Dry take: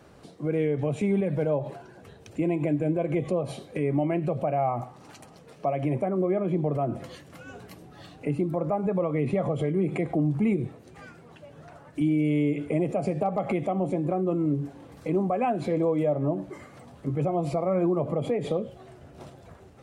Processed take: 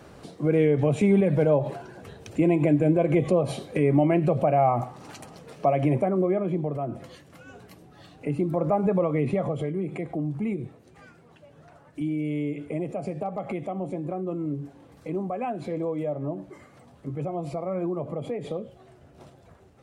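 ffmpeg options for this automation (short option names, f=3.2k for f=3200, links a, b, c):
-af "volume=12dB,afade=t=out:st=5.74:d=0.99:silence=0.398107,afade=t=in:st=8.1:d=0.68:silence=0.446684,afade=t=out:st=8.78:d=1.05:silence=0.375837"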